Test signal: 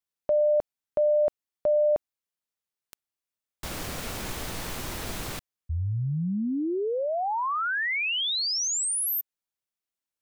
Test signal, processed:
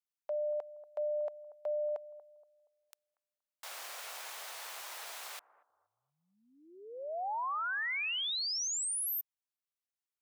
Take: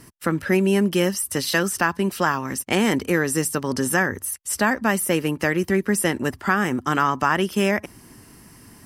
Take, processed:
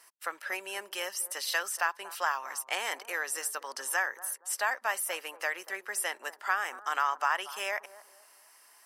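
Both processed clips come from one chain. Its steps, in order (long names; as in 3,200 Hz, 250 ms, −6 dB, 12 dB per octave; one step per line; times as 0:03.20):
high-pass filter 650 Hz 24 dB per octave
bucket-brigade delay 236 ms, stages 2,048, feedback 32%, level −16 dB
level −7.5 dB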